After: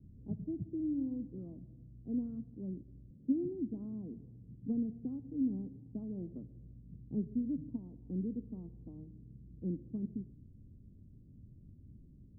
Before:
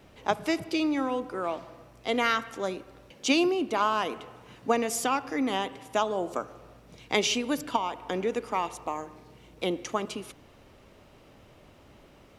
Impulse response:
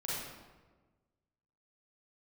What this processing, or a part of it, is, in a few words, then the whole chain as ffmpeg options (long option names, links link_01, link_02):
the neighbour's flat through the wall: -af "lowpass=frequency=230:width=0.5412,lowpass=frequency=230:width=1.3066,equalizer=frequency=94:width_type=o:width=0.77:gain=3,volume=2dB"